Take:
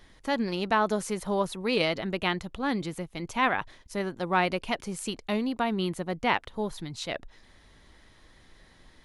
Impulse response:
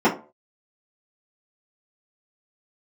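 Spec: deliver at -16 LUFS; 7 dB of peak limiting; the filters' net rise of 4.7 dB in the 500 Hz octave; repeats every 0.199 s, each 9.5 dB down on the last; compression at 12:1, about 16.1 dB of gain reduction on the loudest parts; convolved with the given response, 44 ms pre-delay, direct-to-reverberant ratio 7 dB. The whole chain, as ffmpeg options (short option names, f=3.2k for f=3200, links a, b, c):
-filter_complex "[0:a]equalizer=f=500:t=o:g=6,acompressor=threshold=-34dB:ratio=12,alimiter=level_in=6dB:limit=-24dB:level=0:latency=1,volume=-6dB,aecho=1:1:199|398|597|796:0.335|0.111|0.0365|0.012,asplit=2[a][b];[1:a]atrim=start_sample=2205,adelay=44[c];[b][c]afir=irnorm=-1:irlink=0,volume=-27dB[d];[a][d]amix=inputs=2:normalize=0,volume=22.5dB"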